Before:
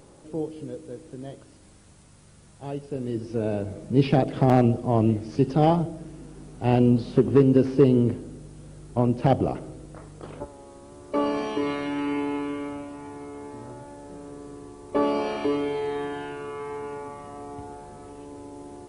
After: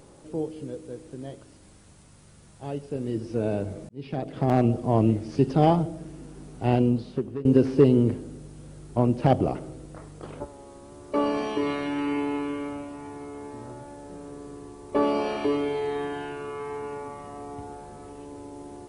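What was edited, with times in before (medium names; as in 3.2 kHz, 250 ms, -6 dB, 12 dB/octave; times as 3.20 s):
3.89–4.83 s: fade in
6.58–7.45 s: fade out, to -21.5 dB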